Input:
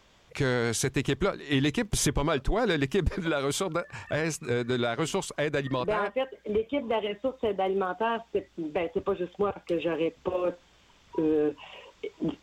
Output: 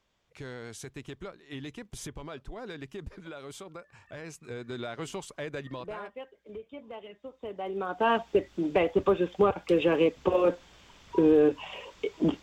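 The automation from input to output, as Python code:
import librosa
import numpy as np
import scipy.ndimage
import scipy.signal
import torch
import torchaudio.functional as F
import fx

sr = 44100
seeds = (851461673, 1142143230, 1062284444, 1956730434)

y = fx.gain(x, sr, db=fx.line((4.07, -15.0), (4.91, -8.5), (5.53, -8.5), (6.46, -15.0), (7.23, -15.0), (7.82, -5.0), (8.11, 4.5)))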